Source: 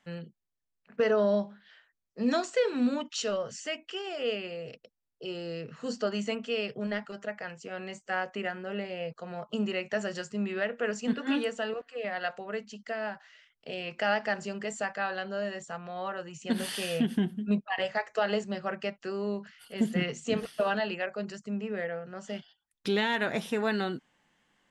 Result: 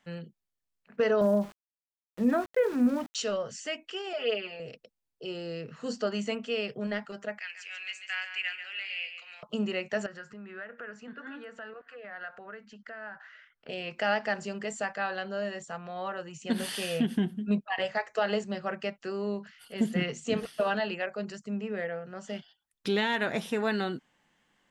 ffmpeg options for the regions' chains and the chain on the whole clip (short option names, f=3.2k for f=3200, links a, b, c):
-filter_complex "[0:a]asettb=1/sr,asplit=3[a][b][c];[a]atrim=end=1.214[d];[b]atrim=start=1.21:end=3.15,asetpts=PTS-STARTPTS,afade=t=in:d=0.004:c=qsin,afade=t=out:st=1.936:d=0.004:c=qsin,lowpass=f=2.1k:w=0.5412,lowpass=f=2.1k:w=1.3066,lowshelf=f=130:g=11,aeval=exprs='val(0)*gte(abs(val(0)),0.00794)':c=same[e];[c]atrim=start=3.146[f];[d][e]acrossfade=d=0.004:c1=hsin:c2=qsin[g];[g][f]acrossfade=d=0.004:c1=qsin:c2=hsin,asettb=1/sr,asplit=3[h][i][j];[h]atrim=end=4.134[k];[i]atrim=start=4.13:end=4.6,asetpts=PTS-STARTPTS,afade=t=in:d=0.004:c=qsin,afade=t=out:st=0.466:d=0.004:c=qsin,acrossover=split=390 4700:gain=0.224 1 0.178[l][m][n];[l][m][n]amix=inputs=3:normalize=0,aecho=1:1:4.7:0.98,atrim=end_sample=20727[o];[j]atrim=start=4.596[p];[k][o]acrossfade=d=0.004:c1=hsin:c2=qsin[q];[q][p]acrossfade=d=0.004:c1=qsin:c2=hsin,asettb=1/sr,asplit=3[r][s][t];[r]atrim=end=7.394[u];[s]atrim=start=7.39:end=9.43,asetpts=PTS-STARTPTS,afade=t=in:d=0.004:c=qsin,afade=t=out:st=2.036:d=0.004:c=qsin,highpass=f=2.4k:t=q:w=3.6,aecho=1:1:140|280|420|560:0.355|0.114|0.0363|0.0116,atrim=end_sample=89964[v];[t]atrim=start=9.426[w];[u][v]acrossfade=d=0.004:c1=hsin:c2=qsin[x];[x][w]acrossfade=d=0.004:c1=qsin:c2=hsin,asettb=1/sr,asplit=3[y][z][aa];[y]atrim=end=10.064[ab];[z]atrim=start=10.06:end=13.69,asetpts=PTS-STARTPTS,afade=t=in:d=0.004:c=qsin,afade=t=out:st=3.626:d=0.004:c=qsin,acompressor=threshold=-47dB:ratio=3:attack=3.2:release=140:knee=1:detection=peak,lowpass=f=2.2k:p=1,equalizer=f=1.5k:w=1.6:g=12.5[ac];[aa]atrim=start=13.686[ad];[ab][ac]acrossfade=d=0.004:c1=hsin:c2=qsin[ae];[ae][ad]acrossfade=d=0.004:c1=qsin:c2=hsin"